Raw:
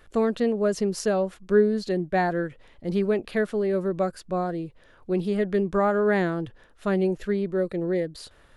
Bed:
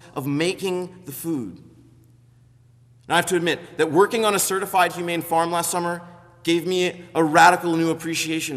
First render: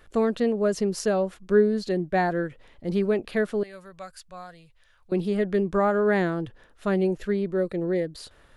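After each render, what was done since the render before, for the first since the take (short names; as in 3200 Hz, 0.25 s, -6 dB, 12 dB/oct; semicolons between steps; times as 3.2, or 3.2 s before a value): 3.63–5.12 passive tone stack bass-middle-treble 10-0-10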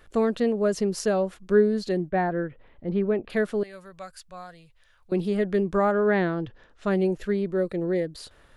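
2.09–3.3 air absorption 400 m; 5.91–6.89 LPF 3500 Hz -> 8400 Hz 24 dB/oct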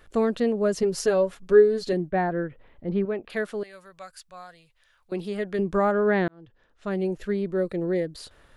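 0.82–1.93 comb 7.2 ms; 3.05–5.59 low shelf 420 Hz -8.5 dB; 6.28–7.84 fade in equal-power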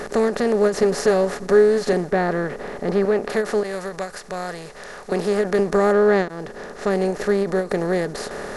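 per-bin compression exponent 0.4; ending taper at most 190 dB/s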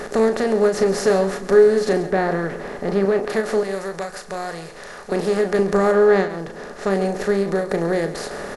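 doubler 36 ms -9 dB; echo 0.137 s -14 dB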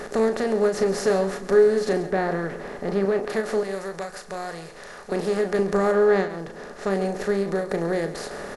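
gain -4 dB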